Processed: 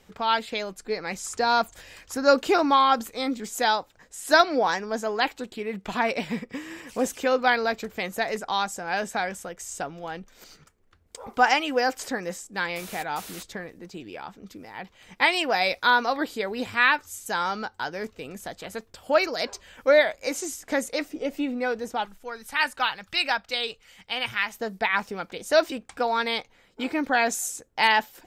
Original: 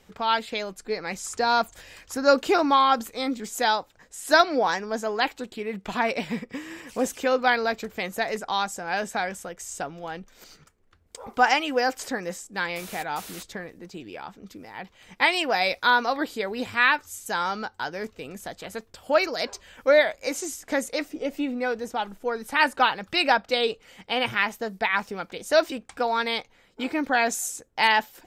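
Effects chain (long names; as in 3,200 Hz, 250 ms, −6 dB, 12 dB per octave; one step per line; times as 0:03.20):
0:22.05–0:24.55: parametric band 350 Hz −11.5 dB 2.9 octaves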